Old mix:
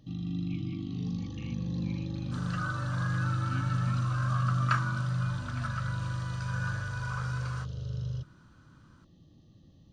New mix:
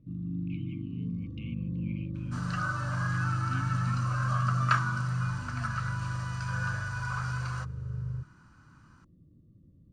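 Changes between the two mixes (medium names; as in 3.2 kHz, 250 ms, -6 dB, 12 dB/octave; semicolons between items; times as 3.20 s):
first sound: add boxcar filter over 55 samples; second sound +3.0 dB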